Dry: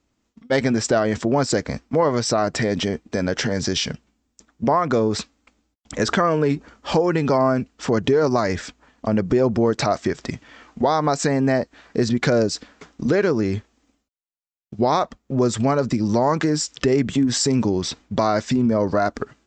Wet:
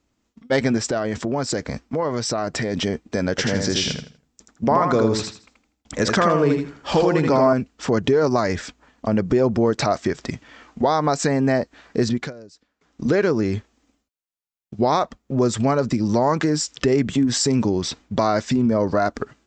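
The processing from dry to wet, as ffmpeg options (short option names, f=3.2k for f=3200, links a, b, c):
-filter_complex "[0:a]asettb=1/sr,asplit=3[a][b][c];[a]atrim=end=0.774[d];[b]atrim=start=0.77:end=2.74,asetpts=PTS-STARTPTS,afade=t=in:d=0.004:c=qsin,afade=t=out:st=1.966:d=0.004:c=qsin,acompressor=threshold=-22dB:ratio=2:attack=3.2:release=140:knee=1:detection=peak[e];[c]atrim=start=2.736[f];[d][e]acrossfade=d=0.004:c1=hsin:c2=qsin[g];[g][f]acrossfade=d=0.004:c1=qsin:c2=hsin,asettb=1/sr,asplit=3[h][i][j];[h]atrim=end=3.304[k];[i]atrim=start=3.3:end=7.53,asetpts=PTS-STARTPTS,afade=t=in:d=0.004:c=qsin,afade=t=out:st=4.226:d=0.004:c=qsin,aecho=1:1:81|162|243|324:0.596|0.155|0.0403|0.0105,atrim=end_sample=186543[l];[j]atrim=start=7.526[m];[k][l]acrossfade=d=0.004:c1=hsin:c2=qsin[n];[n][m]acrossfade=d=0.004:c1=qsin:c2=hsin,asplit=3[o][p][q];[o]atrim=end=12.33,asetpts=PTS-STARTPTS,afade=t=out:st=12.09:d=0.24:silence=0.0707946[r];[p]atrim=start=12.33:end=12.83,asetpts=PTS-STARTPTS,volume=-23dB[s];[q]atrim=start=12.83,asetpts=PTS-STARTPTS,afade=t=in:d=0.24:silence=0.0707946[t];[r][s][t]concat=n=3:v=0:a=1"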